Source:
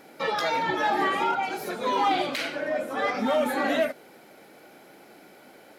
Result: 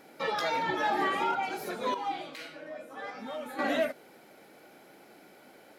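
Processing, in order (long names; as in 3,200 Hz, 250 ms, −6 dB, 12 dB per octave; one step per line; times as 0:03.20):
0:01.94–0:03.59: tuned comb filter 160 Hz, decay 0.3 s, harmonics all, mix 80%
level −4 dB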